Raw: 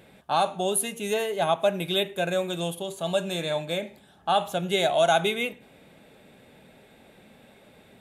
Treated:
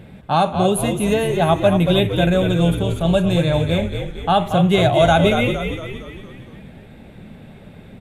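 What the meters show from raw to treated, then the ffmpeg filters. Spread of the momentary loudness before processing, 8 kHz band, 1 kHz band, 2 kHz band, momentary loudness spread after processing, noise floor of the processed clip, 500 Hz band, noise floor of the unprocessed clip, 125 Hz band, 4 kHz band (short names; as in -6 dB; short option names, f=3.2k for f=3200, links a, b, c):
10 LU, +0.5 dB, +7.0 dB, +6.5 dB, 12 LU, -42 dBFS, +8.0 dB, -56 dBFS, +18.5 dB, +4.5 dB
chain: -filter_complex "[0:a]bass=f=250:g=14,treble=f=4k:g=-7,asplit=7[a][b][c][d][e][f][g];[b]adelay=230,afreqshift=-57,volume=-7dB[h];[c]adelay=460,afreqshift=-114,volume=-12.7dB[i];[d]adelay=690,afreqshift=-171,volume=-18.4dB[j];[e]adelay=920,afreqshift=-228,volume=-24dB[k];[f]adelay=1150,afreqshift=-285,volume=-29.7dB[l];[g]adelay=1380,afreqshift=-342,volume=-35.4dB[m];[a][h][i][j][k][l][m]amix=inputs=7:normalize=0,volume=6dB"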